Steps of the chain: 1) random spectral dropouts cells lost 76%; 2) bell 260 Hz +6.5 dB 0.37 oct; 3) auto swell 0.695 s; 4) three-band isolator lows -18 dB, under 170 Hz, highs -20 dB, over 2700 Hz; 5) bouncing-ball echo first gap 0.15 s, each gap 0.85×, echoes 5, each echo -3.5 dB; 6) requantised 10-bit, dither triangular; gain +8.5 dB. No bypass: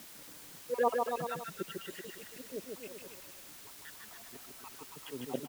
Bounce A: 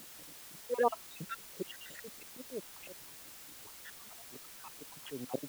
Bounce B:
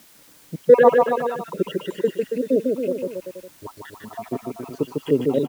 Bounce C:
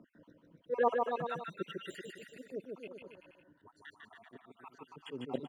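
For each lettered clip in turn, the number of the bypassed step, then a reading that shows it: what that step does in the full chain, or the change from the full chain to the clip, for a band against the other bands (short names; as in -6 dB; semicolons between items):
5, crest factor change +1.5 dB; 3, crest factor change -4.0 dB; 6, distortion -11 dB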